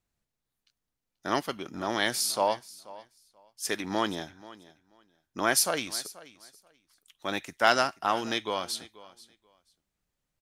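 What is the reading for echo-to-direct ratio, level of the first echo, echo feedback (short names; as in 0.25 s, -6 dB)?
-19.5 dB, -19.5 dB, 18%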